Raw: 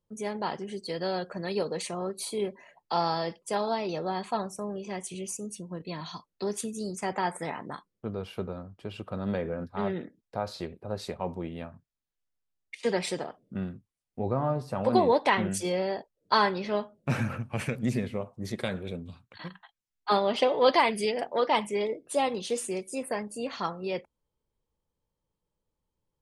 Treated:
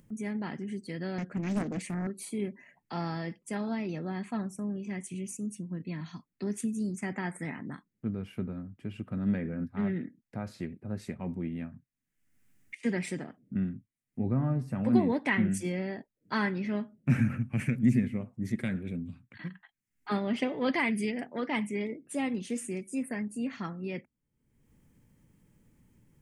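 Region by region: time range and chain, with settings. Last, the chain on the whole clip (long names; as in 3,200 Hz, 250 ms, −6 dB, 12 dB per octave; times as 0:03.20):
0:01.18–0:02.07: low-shelf EQ 330 Hz +5.5 dB + highs frequency-modulated by the lows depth 0.98 ms
whole clip: octave-band graphic EQ 125/250/500/1,000/2,000/4,000/8,000 Hz +8/+12/−6/−7/+10/−10/+3 dB; upward compression, threshold −38 dBFS; level −6.5 dB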